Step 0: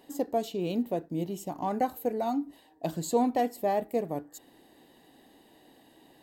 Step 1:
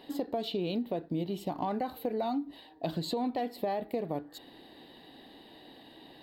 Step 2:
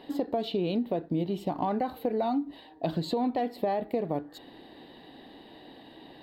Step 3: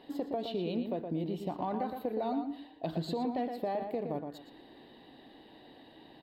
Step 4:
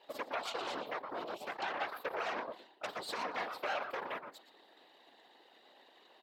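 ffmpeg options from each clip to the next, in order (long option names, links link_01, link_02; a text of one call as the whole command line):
ffmpeg -i in.wav -af "highshelf=frequency=5200:width_type=q:width=3:gain=-8.5,alimiter=limit=-22dB:level=0:latency=1:release=29,acompressor=threshold=-34dB:ratio=5,volume=4.5dB" out.wav
ffmpeg -i in.wav -af "highshelf=frequency=4100:gain=-9,volume=4dB" out.wav
ffmpeg -i in.wav -filter_complex "[0:a]asplit=2[link_01][link_02];[link_02]adelay=117,lowpass=frequency=3500:poles=1,volume=-6dB,asplit=2[link_03][link_04];[link_04]adelay=117,lowpass=frequency=3500:poles=1,volume=0.23,asplit=2[link_05][link_06];[link_06]adelay=117,lowpass=frequency=3500:poles=1,volume=0.23[link_07];[link_01][link_03][link_05][link_07]amix=inputs=4:normalize=0,volume=-6dB" out.wav
ffmpeg -i in.wav -af "aeval=exprs='0.0891*(cos(1*acos(clip(val(0)/0.0891,-1,1)))-cos(1*PI/2))+0.0316*(cos(8*acos(clip(val(0)/0.0891,-1,1)))-cos(8*PI/2))':channel_layout=same,afftfilt=real='hypot(re,im)*cos(2*PI*random(0))':imag='hypot(re,im)*sin(2*PI*random(1))':win_size=512:overlap=0.75,highpass=600,volume=2dB" out.wav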